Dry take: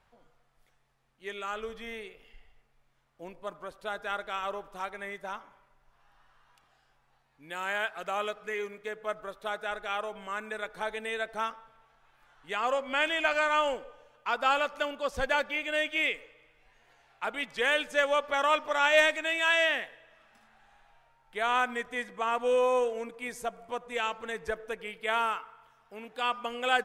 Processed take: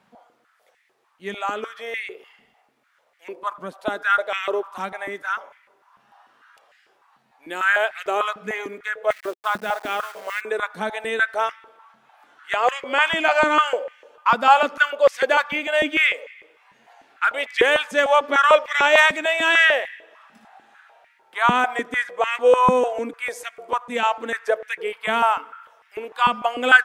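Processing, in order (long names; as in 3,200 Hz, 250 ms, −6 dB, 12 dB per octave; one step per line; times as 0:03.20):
0:09.11–0:10.41: hold until the input has moved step −43.5 dBFS
high-pass on a step sequencer 6.7 Hz 200–2,000 Hz
level +6.5 dB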